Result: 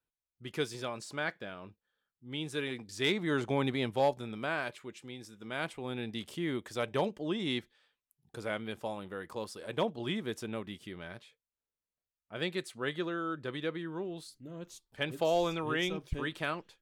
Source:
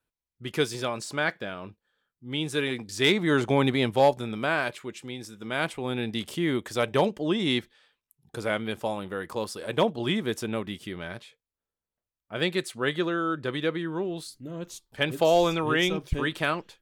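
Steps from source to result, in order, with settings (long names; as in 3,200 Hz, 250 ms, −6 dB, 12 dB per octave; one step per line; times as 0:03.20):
high-shelf EQ 11,000 Hz −3.5 dB
level −8 dB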